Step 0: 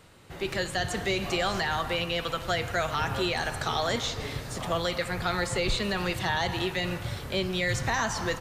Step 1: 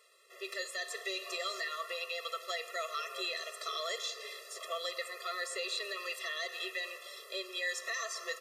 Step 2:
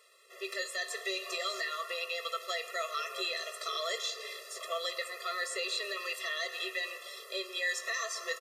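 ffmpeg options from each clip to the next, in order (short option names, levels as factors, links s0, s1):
-af "tiltshelf=f=1100:g=-5.5,afftfilt=real='re*eq(mod(floor(b*sr/1024/350),2),1)':imag='im*eq(mod(floor(b*sr/1024/350),2),1)':win_size=1024:overlap=0.75,volume=0.447"
-filter_complex "[0:a]asplit=2[s0][s1];[s1]adelay=18,volume=0.282[s2];[s0][s2]amix=inputs=2:normalize=0,volume=1.26"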